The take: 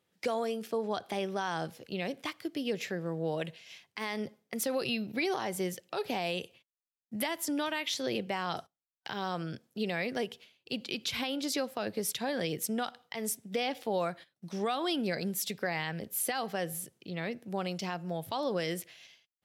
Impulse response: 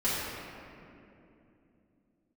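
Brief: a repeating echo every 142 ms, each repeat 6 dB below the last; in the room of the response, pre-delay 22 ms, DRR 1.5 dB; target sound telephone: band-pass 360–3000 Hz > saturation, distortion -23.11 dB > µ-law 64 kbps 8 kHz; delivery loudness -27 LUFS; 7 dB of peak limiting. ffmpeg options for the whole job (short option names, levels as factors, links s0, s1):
-filter_complex "[0:a]alimiter=level_in=1.5:limit=0.0631:level=0:latency=1,volume=0.668,aecho=1:1:142|284|426|568|710|852:0.501|0.251|0.125|0.0626|0.0313|0.0157,asplit=2[s0][s1];[1:a]atrim=start_sample=2205,adelay=22[s2];[s1][s2]afir=irnorm=-1:irlink=0,volume=0.237[s3];[s0][s3]amix=inputs=2:normalize=0,highpass=360,lowpass=3000,asoftclip=threshold=0.0501,volume=3.76" -ar 8000 -c:a pcm_mulaw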